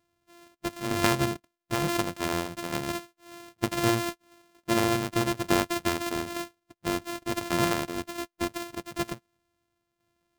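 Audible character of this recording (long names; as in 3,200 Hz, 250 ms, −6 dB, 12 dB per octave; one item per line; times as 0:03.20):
a buzz of ramps at a fixed pitch in blocks of 128 samples
tremolo saw down 1.1 Hz, depth 55%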